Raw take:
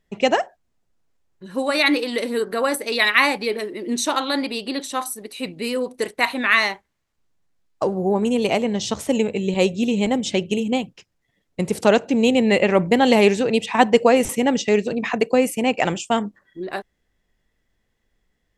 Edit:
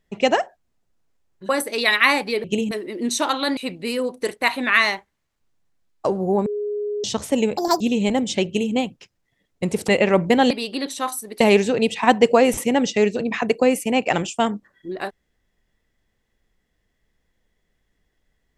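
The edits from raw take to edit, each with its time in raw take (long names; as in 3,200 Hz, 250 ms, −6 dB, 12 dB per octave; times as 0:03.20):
0:01.49–0:02.63: remove
0:04.44–0:05.34: move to 0:13.12
0:08.23–0:08.81: beep over 415 Hz −22.5 dBFS
0:09.34–0:09.77: play speed 183%
0:10.43–0:10.70: duplicate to 0:03.58
0:11.85–0:12.50: remove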